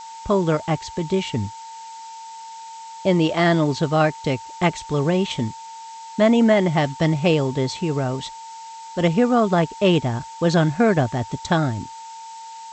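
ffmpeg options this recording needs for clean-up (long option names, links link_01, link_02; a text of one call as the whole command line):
ffmpeg -i in.wav -af "bandreject=frequency=900:width=30,afftdn=noise_reduction=27:noise_floor=-38" out.wav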